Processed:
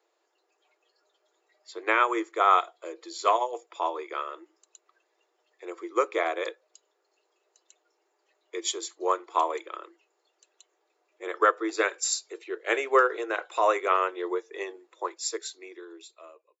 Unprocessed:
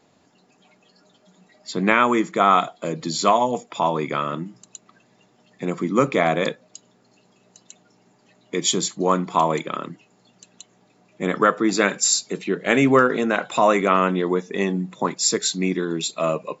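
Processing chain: fade out at the end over 1.63 s; rippled Chebyshev high-pass 330 Hz, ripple 3 dB; upward expansion 1.5:1, over -30 dBFS; trim -2.5 dB

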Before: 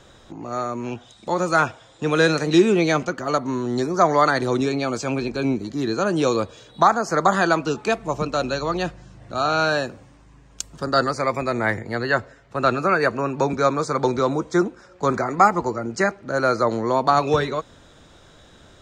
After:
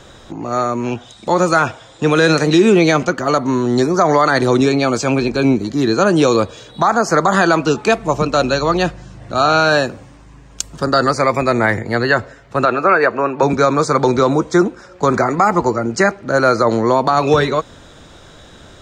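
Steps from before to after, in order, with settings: 12.65–13.43 s: tone controls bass -12 dB, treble -14 dB; peak limiter -11.5 dBFS, peak gain reduction 9.5 dB; trim +8.5 dB

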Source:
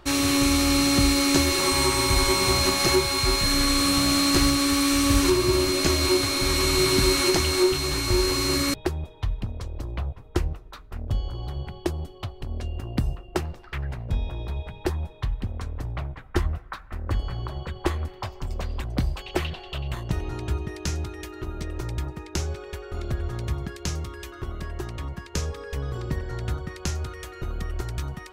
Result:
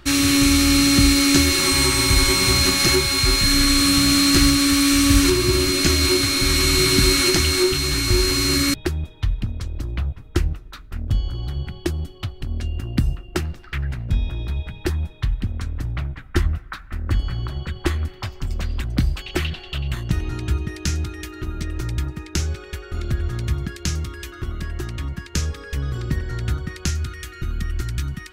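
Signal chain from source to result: high-order bell 660 Hz -9 dB, from 26.89 s -15.5 dB; trim +5.5 dB

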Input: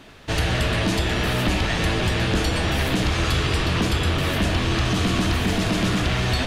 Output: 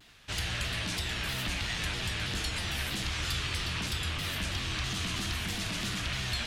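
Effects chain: amplifier tone stack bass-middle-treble 5-5-5; vibrato with a chosen wave saw down 3.1 Hz, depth 160 cents; trim +1 dB

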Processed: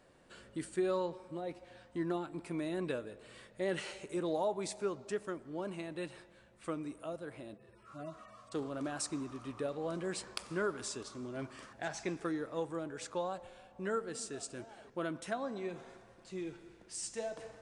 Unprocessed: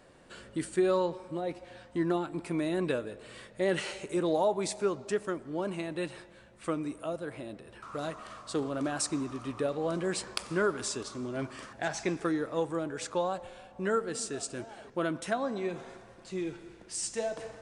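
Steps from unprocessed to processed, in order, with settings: 7.54–8.52 s: harmonic-percussive separation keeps harmonic; trim -6.5 dB

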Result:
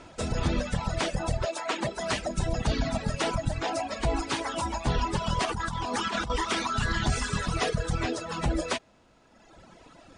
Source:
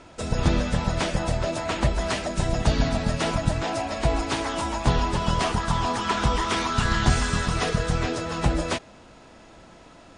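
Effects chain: 1.45–2.09 s: high-pass 500 Hz -> 120 Hz 12 dB/octave; reverb removal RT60 1.6 s; peak limiter -16 dBFS, peak gain reduction 8 dB; 5.45–6.30 s: compressor with a negative ratio -31 dBFS, ratio -1

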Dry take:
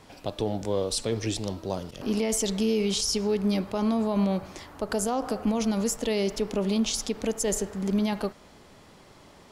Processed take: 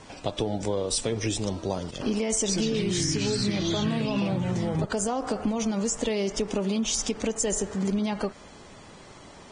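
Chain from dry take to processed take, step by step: dynamic bell 4.2 kHz, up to -6 dB, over -50 dBFS, Q 5.7; 2.37–4.85 s: ever faster or slower copies 123 ms, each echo -4 st, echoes 3; compression 6:1, threshold -28 dBFS, peak gain reduction 10 dB; trim +4.5 dB; Vorbis 16 kbps 22.05 kHz

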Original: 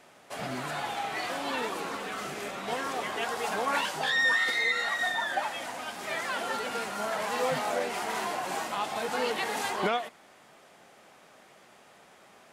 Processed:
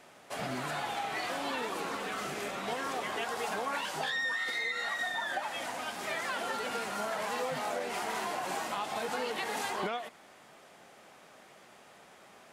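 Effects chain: compression, threshold -31 dBFS, peak gain reduction 9 dB

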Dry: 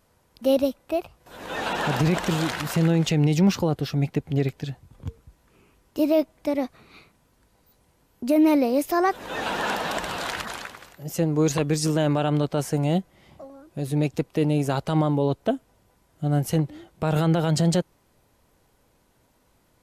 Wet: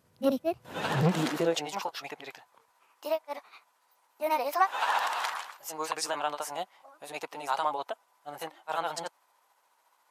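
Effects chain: high-pass sweep 120 Hz -> 930 Hz, 1.90–3.42 s; granular stretch 0.51×, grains 142 ms; transformer saturation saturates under 550 Hz; trim -3 dB

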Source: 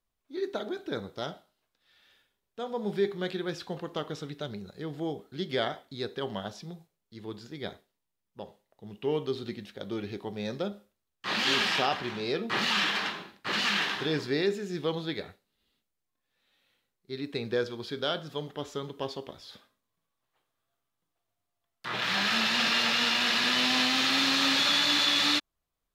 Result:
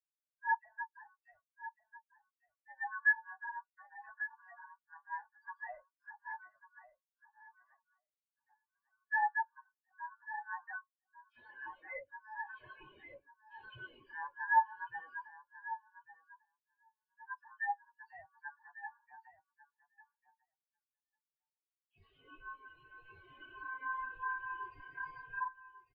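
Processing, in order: low-pass that closes with the level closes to 1.6 kHz, closed at -23 dBFS; in parallel at -0.5 dB: peak limiter -23.5 dBFS, peak gain reduction 7.5 dB; on the sum: ring modulator 1.3 kHz; phase dispersion lows, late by 105 ms, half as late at 2.8 kHz; hard clipper -25 dBFS, distortion -15 dB; flange 0.98 Hz, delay 7 ms, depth 1.7 ms, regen -63%; on a send: feedback delay 1146 ms, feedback 43%, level -3.5 dB; on the sum: spectral contrast expander 4:1; trim +4.5 dB

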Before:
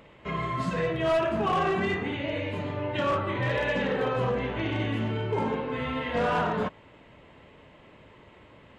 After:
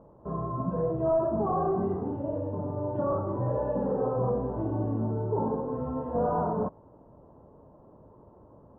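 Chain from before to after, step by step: inverse Chebyshev low-pass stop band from 2 kHz, stop band 40 dB

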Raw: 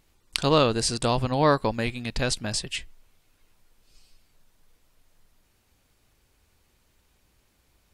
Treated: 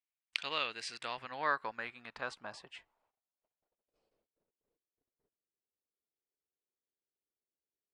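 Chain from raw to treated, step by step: gate -56 dBFS, range -24 dB; band-pass sweep 2.3 kHz -> 410 Hz, 0.73–4.55 s; trim -2.5 dB

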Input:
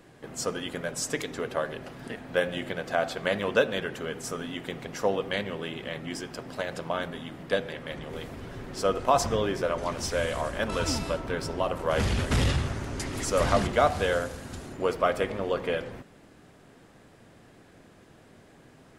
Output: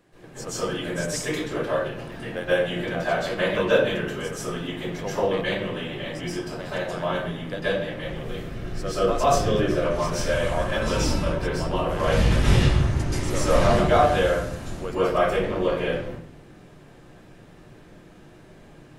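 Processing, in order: 8.07–9.84 s: peaking EQ 930 Hz -10.5 dB 0.24 oct; reverberation RT60 0.55 s, pre-delay 123 ms, DRR -11.5 dB; trim -7.5 dB

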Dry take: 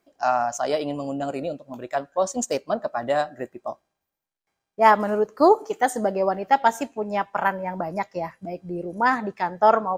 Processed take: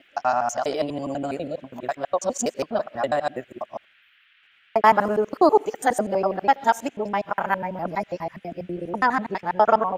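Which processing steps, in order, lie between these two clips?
time reversed locally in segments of 82 ms; band noise 1.4–3.2 kHz -59 dBFS

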